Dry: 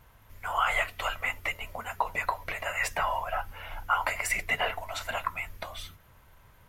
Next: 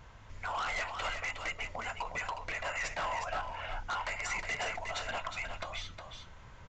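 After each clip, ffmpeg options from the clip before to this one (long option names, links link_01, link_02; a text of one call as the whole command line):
ffmpeg -i in.wav -af "acompressor=threshold=-49dB:ratio=1.5,aresample=16000,asoftclip=type=hard:threshold=-36dB,aresample=44100,aecho=1:1:362:0.473,volume=4dB" out.wav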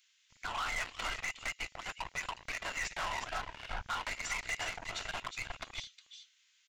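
ffmpeg -i in.wav -filter_complex "[0:a]equalizer=frequency=300:width_type=o:width=1.9:gain=-12.5,acrossover=split=2600[link_01][link_02];[link_01]acrusher=bits=5:mix=0:aa=0.5[link_03];[link_03][link_02]amix=inputs=2:normalize=0" out.wav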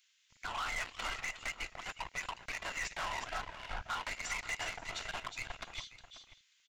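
ffmpeg -i in.wav -filter_complex "[0:a]asplit=2[link_01][link_02];[link_02]adelay=536.4,volume=-13dB,highshelf=frequency=4000:gain=-12.1[link_03];[link_01][link_03]amix=inputs=2:normalize=0,volume=-1.5dB" out.wav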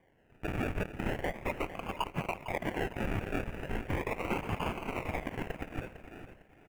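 ffmpeg -i in.wav -af "acrusher=samples=33:mix=1:aa=0.000001:lfo=1:lforange=19.8:lforate=0.38,highshelf=frequency=3200:width_type=q:width=3:gain=-8.5,aecho=1:1:454|908|1362:0.224|0.0694|0.0215,volume=5dB" out.wav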